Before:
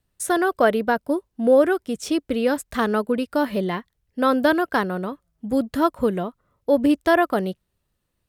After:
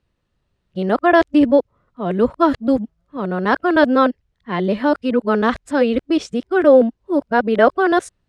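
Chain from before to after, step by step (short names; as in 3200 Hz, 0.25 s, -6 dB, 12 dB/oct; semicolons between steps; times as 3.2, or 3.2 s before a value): whole clip reversed; air absorption 110 m; gain +5 dB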